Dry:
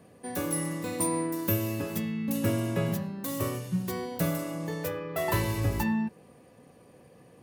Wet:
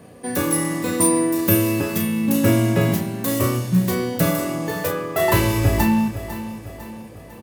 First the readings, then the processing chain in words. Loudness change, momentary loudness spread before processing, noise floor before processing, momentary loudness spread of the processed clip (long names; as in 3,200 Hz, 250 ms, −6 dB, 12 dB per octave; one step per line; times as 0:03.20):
+10.5 dB, 6 LU, −56 dBFS, 14 LU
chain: in parallel at −9 dB: floating-point word with a short mantissa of 2 bits
on the sum: double-tracking delay 33 ms −6 dB
repeating echo 501 ms, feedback 49%, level −13 dB
level +7 dB